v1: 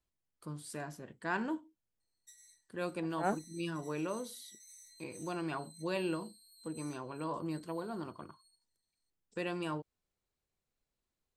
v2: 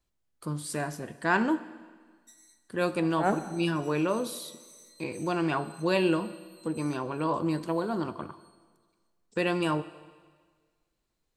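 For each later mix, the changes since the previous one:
first voice +8.5 dB; second voice +3.5 dB; reverb: on, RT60 1.6 s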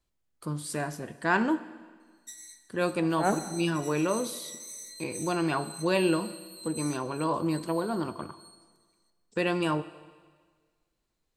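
background +11.5 dB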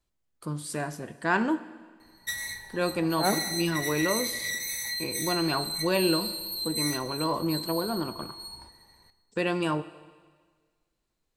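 background: remove band-pass filter 7.3 kHz, Q 4.3

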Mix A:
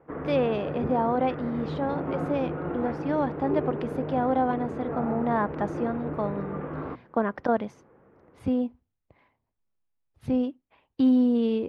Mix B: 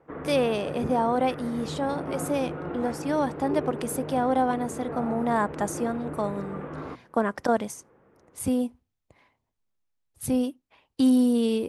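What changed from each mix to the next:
background -3.0 dB; master: remove distance through air 310 m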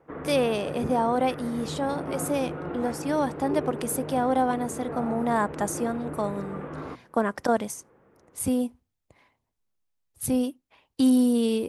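master: add treble shelf 7.6 kHz +6 dB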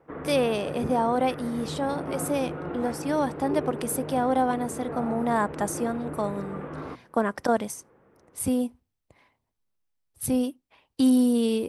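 master: add band-stop 6.8 kHz, Q 13

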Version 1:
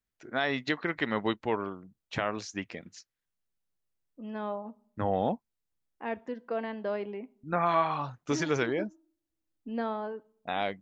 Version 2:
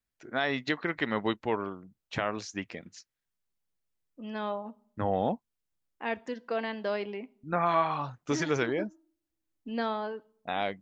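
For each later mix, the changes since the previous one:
second voice: remove low-pass 1.2 kHz 6 dB/octave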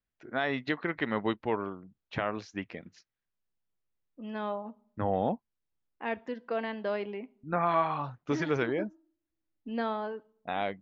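master: add distance through air 190 m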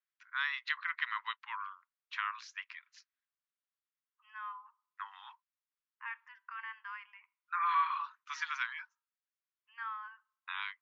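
second voice: add boxcar filter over 11 samples; master: add steep high-pass 990 Hz 96 dB/octave

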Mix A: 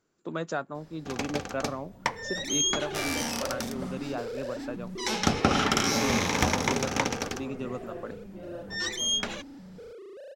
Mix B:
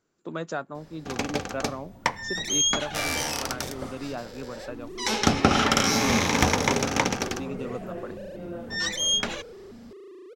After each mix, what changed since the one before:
first sound +3.5 dB; second sound: entry +2.25 s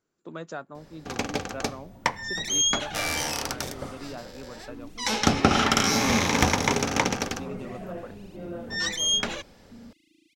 speech -5.0 dB; second sound: add brick-wall FIR band-stop 320–2000 Hz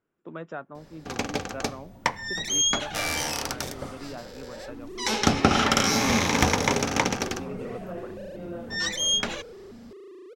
speech: add Savitzky-Golay filter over 25 samples; second sound: remove brick-wall FIR band-stop 320–2000 Hz

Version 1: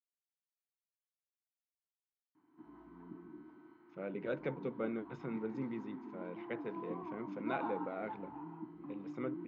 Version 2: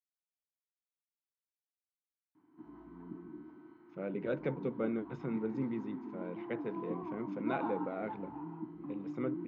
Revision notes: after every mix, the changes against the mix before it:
master: add bass shelf 500 Hz +5.5 dB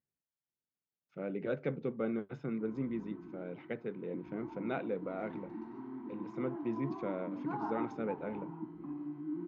speech: entry -2.80 s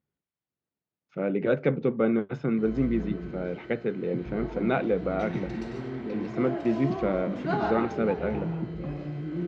speech +11.0 dB; background: remove two resonant band-passes 530 Hz, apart 1.7 oct

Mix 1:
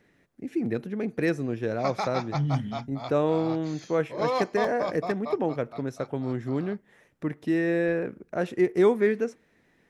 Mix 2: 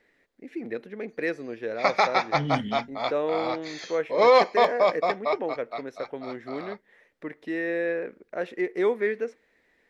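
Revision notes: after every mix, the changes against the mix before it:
first voice -12.0 dB; master: add ten-band graphic EQ 125 Hz -8 dB, 250 Hz +3 dB, 500 Hz +10 dB, 1 kHz +4 dB, 2 kHz +12 dB, 4 kHz +7 dB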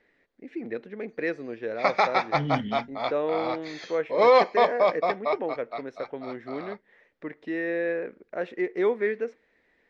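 master: add distance through air 99 m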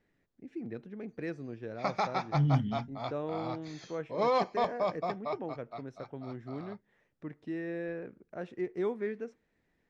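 master: add ten-band graphic EQ 125 Hz +8 dB, 250 Hz -3 dB, 500 Hz -10 dB, 1 kHz -4 dB, 2 kHz -12 dB, 4 kHz -7 dB

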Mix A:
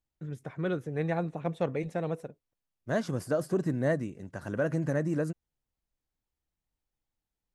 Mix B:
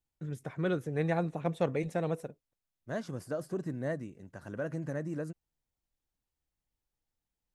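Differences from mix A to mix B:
first voice: add treble shelf 6.2 kHz +7 dB; second voice -7.0 dB

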